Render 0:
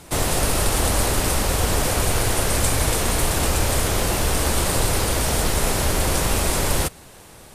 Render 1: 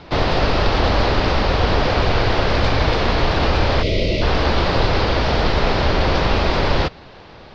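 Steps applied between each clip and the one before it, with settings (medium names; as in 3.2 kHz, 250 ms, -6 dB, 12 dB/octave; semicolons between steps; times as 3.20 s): steep low-pass 4.9 kHz 48 dB/octave; peaking EQ 740 Hz +2.5 dB 2.5 oct; time-frequency box 3.83–4.22 s, 670–1900 Hz -22 dB; trim +3.5 dB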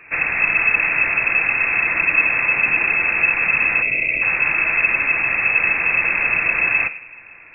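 self-modulated delay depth 0.12 ms; simulated room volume 2000 m³, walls furnished, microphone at 0.86 m; frequency inversion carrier 2.6 kHz; trim -4 dB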